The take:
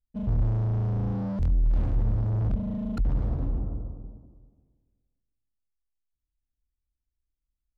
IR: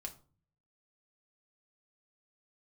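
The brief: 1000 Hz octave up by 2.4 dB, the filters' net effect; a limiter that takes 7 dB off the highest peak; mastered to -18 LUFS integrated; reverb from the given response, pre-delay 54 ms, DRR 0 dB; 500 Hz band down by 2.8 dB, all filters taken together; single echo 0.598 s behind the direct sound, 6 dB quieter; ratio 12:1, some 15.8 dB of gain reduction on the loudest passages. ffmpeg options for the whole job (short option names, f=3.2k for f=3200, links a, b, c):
-filter_complex "[0:a]equalizer=f=500:t=o:g=-5,equalizer=f=1k:t=o:g=5,acompressor=threshold=-36dB:ratio=12,alimiter=level_in=12dB:limit=-24dB:level=0:latency=1,volume=-12dB,aecho=1:1:598:0.501,asplit=2[a][b];[1:a]atrim=start_sample=2205,adelay=54[c];[b][c]afir=irnorm=-1:irlink=0,volume=3dB[d];[a][d]amix=inputs=2:normalize=0,volume=22.5dB"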